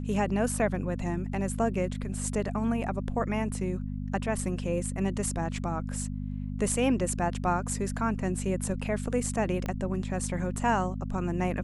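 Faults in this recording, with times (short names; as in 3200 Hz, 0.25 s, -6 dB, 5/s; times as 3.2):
hum 50 Hz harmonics 5 -34 dBFS
9.66 pop -20 dBFS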